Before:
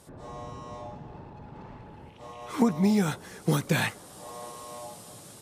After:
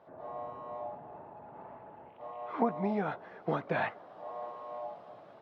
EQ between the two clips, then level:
resonant band-pass 930 Hz, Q 0.76
high-frequency loss of the air 320 metres
parametric band 660 Hz +9.5 dB 0.28 octaves
0.0 dB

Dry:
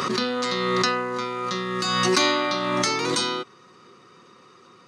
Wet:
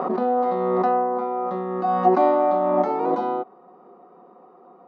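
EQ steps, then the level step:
linear-phase brick-wall high-pass 160 Hz
low-pass with resonance 730 Hz, resonance Q 8.4
0.0 dB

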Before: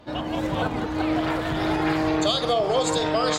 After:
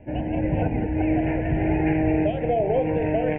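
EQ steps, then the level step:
Butterworth band-reject 1,200 Hz, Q 1.2
Butterworth low-pass 2,700 Hz 96 dB per octave
low-shelf EQ 150 Hz +10.5 dB
0.0 dB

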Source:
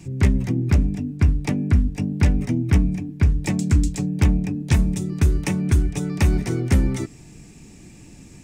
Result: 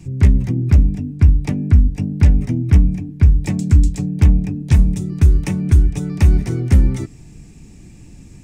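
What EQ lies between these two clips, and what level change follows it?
low-shelf EQ 150 Hz +11 dB
−2.0 dB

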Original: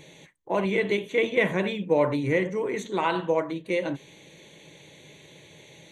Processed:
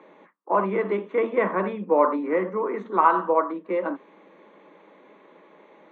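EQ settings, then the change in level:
Butterworth high-pass 190 Hz 72 dB per octave
low-pass with resonance 1,200 Hz, resonance Q 5.7
0.0 dB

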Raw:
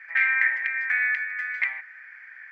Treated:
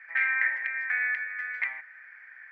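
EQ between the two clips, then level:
high-shelf EQ 2,400 Hz −11 dB
0.0 dB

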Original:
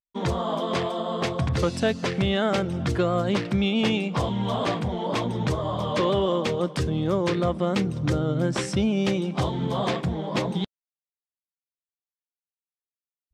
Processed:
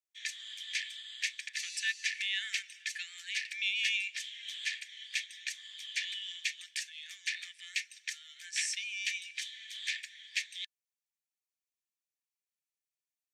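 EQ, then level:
Chebyshev high-pass with heavy ripple 1,700 Hz, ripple 6 dB
notch filter 5,100 Hz, Q 15
+3.0 dB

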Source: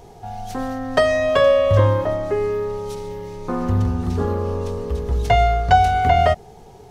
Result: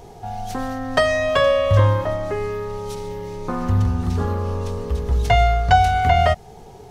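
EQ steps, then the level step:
dynamic equaliser 380 Hz, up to −7 dB, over −31 dBFS, Q 0.83
+2.0 dB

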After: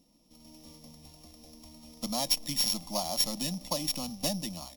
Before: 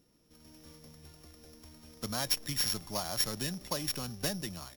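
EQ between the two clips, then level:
high-shelf EQ 11,000 Hz −5.5 dB
phaser with its sweep stopped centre 410 Hz, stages 6
+5.5 dB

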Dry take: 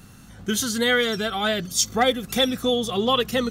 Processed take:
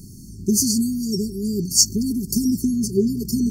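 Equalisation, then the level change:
linear-phase brick-wall band-stop 420–4,300 Hz
+7.0 dB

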